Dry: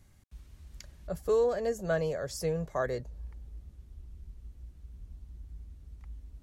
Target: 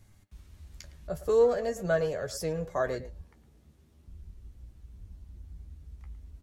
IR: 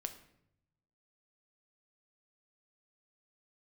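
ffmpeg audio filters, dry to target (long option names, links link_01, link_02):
-filter_complex "[0:a]asettb=1/sr,asplit=3[link_01][link_02][link_03];[link_01]atrim=end=3.214[link_04];[link_02]atrim=start=3.21:end=4.08,asetpts=PTS-STARTPTS,afade=type=in:duration=0.004:curve=qsin,afade=type=out:start_time=0.866:duration=0.004:curve=qsin,highpass=150[link_05];[link_03]atrim=start=4.076[link_06];[link_04][link_05]acrossfade=duration=0.004:curve1=hsin:curve2=qsin[link_07];[link_07][link_06]acrossfade=duration=0.004:curve1=qsin:curve2=hsin,asplit=2[link_08][link_09];[link_09]adelay=110,highpass=300,lowpass=3400,asoftclip=type=hard:threshold=-27dB,volume=-14dB[link_10];[link_08][link_10]amix=inputs=2:normalize=0,flanger=delay=9:depth=4.8:regen=45:speed=0.42:shape=triangular,volume=5.5dB"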